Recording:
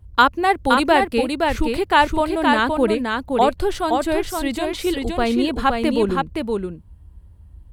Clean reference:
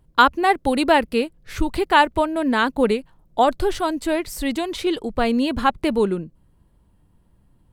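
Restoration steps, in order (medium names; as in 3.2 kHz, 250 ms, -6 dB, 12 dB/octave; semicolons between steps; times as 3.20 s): 1.48–1.60 s: high-pass 140 Hz 24 dB/octave; 5.03–5.15 s: high-pass 140 Hz 24 dB/octave; noise print and reduce 14 dB; inverse comb 519 ms -4 dB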